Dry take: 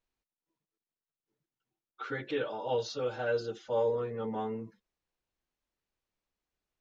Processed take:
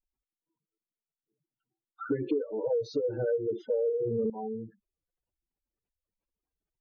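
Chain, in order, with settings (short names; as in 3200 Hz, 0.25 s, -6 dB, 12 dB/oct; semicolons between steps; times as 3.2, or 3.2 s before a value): spectral gate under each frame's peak -10 dB strong; 2.09–4.3 resonant low shelf 540 Hz +12 dB, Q 3; compressor 10:1, threshold -28 dBFS, peak gain reduction 15 dB; gain +2 dB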